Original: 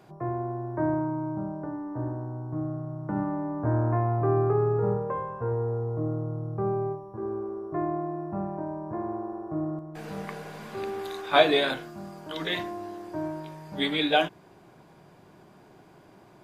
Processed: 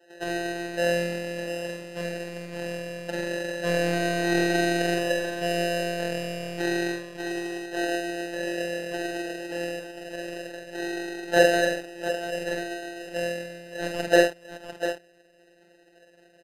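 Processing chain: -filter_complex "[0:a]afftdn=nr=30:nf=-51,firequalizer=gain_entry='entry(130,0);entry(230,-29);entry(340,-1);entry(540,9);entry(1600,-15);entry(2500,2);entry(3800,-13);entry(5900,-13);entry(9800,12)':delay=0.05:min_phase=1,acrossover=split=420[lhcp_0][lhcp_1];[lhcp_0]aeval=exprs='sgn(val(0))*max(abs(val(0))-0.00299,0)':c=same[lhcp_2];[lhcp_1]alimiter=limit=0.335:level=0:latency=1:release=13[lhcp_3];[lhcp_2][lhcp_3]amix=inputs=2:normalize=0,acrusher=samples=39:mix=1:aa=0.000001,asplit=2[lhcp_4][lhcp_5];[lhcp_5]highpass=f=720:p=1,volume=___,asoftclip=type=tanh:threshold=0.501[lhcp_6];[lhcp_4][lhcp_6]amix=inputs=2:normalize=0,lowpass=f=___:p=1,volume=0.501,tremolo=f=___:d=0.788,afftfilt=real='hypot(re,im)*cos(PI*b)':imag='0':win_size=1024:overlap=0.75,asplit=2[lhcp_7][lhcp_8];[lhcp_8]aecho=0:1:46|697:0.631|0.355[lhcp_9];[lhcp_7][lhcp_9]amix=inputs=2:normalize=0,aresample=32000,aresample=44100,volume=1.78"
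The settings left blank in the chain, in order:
2.82, 3100, 74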